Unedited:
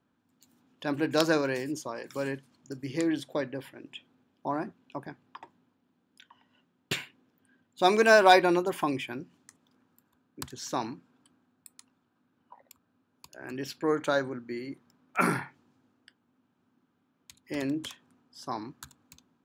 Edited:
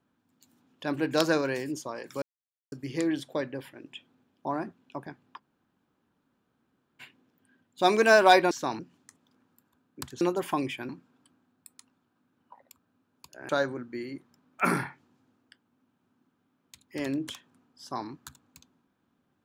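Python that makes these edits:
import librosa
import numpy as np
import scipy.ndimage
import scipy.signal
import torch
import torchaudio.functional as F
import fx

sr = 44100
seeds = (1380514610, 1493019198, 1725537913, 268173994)

y = fx.edit(x, sr, fx.silence(start_s=2.22, length_s=0.5),
    fx.room_tone_fill(start_s=5.39, length_s=1.62, crossfade_s=0.04),
    fx.swap(start_s=8.51, length_s=0.68, other_s=10.61, other_length_s=0.28),
    fx.cut(start_s=13.49, length_s=0.56), tone=tone)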